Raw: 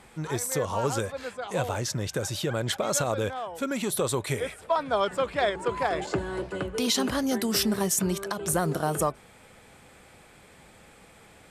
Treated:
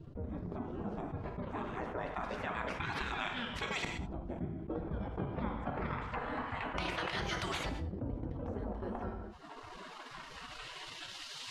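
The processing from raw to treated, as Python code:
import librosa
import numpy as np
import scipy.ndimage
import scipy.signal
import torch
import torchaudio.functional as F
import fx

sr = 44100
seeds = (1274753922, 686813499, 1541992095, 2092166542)

y = fx.spec_gate(x, sr, threshold_db=-20, keep='weak')
y = fx.low_shelf(y, sr, hz=330.0, db=8.5)
y = fx.filter_lfo_lowpass(y, sr, shape='saw_up', hz=0.26, low_hz=250.0, high_hz=3800.0, q=1.0)
y = fx.transient(y, sr, attack_db=2, sustain_db=-8)
y = fx.rev_gated(y, sr, seeds[0], gate_ms=230, shape='falling', drr_db=9.0)
y = fx.env_flatten(y, sr, amount_pct=70)
y = F.gain(torch.from_numpy(y), -1.5).numpy()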